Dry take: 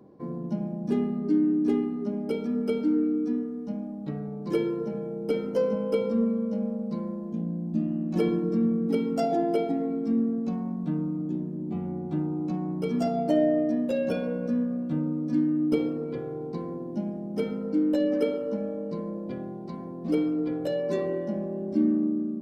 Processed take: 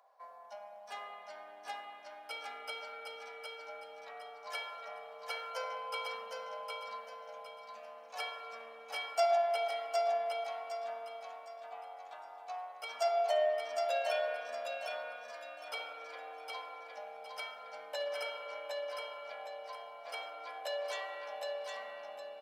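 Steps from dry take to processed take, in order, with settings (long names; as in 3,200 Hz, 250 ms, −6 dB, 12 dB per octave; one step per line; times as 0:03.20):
elliptic high-pass filter 670 Hz, stop band 50 dB
dynamic equaliser 4,600 Hz, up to +4 dB, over −54 dBFS, Q 0.72
on a send: repeating echo 761 ms, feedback 34%, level −3.5 dB
on the sum: spring reverb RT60 3.1 s, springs 59 ms, chirp 45 ms, DRR 6 dB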